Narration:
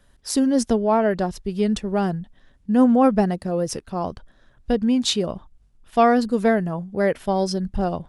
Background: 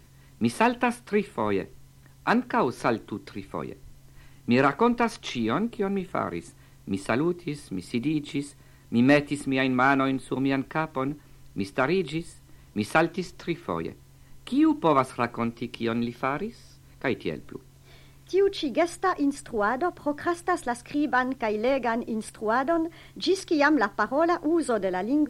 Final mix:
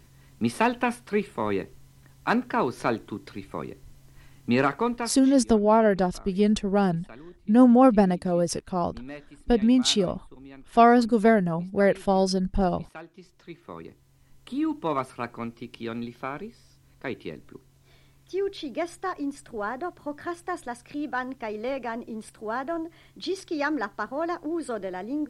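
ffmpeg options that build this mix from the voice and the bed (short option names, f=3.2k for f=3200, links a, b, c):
-filter_complex "[0:a]adelay=4800,volume=-0.5dB[a];[1:a]volume=14dB,afade=t=out:st=4.57:d=0.84:silence=0.1,afade=t=in:st=13.07:d=1.36:silence=0.177828[b];[a][b]amix=inputs=2:normalize=0"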